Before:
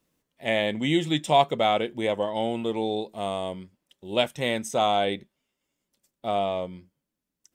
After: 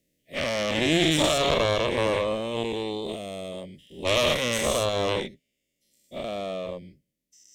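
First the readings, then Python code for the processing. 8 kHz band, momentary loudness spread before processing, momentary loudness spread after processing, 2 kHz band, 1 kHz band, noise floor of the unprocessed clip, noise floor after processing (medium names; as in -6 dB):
+9.0 dB, 11 LU, 15 LU, +3.5 dB, -5.0 dB, -85 dBFS, -80 dBFS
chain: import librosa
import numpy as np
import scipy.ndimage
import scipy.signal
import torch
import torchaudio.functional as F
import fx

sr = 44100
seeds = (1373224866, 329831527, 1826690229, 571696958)

y = fx.spec_dilate(x, sr, span_ms=240)
y = scipy.signal.sosfilt(scipy.signal.cheby1(3, 1.0, [610.0, 1900.0], 'bandstop', fs=sr, output='sos'), y)
y = fx.cheby_harmonics(y, sr, harmonics=(4,), levels_db=(-10,), full_scale_db=-6.5)
y = y * 10.0 ** (-4.0 / 20.0)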